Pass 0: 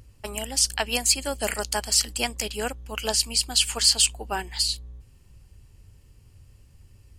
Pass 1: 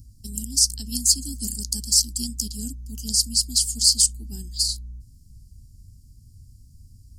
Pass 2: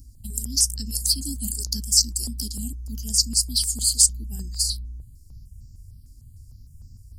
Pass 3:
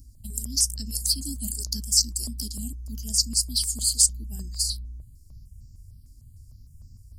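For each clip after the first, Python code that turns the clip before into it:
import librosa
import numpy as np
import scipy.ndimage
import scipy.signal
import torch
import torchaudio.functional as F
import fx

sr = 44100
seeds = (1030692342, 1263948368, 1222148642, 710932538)

y1 = scipy.signal.sosfilt(scipy.signal.ellip(3, 1.0, 40, [250.0, 5000.0], 'bandstop', fs=sr, output='sos'), x)
y1 = F.gain(torch.from_numpy(y1), 4.5).numpy()
y2 = fx.phaser_held(y1, sr, hz=6.6, low_hz=550.0, high_hz=3300.0)
y2 = F.gain(torch.from_numpy(y2), 3.5).numpy()
y3 = fx.small_body(y2, sr, hz=(620.0, 1100.0, 2200.0), ring_ms=45, db=8)
y3 = F.gain(torch.from_numpy(y3), -2.5).numpy()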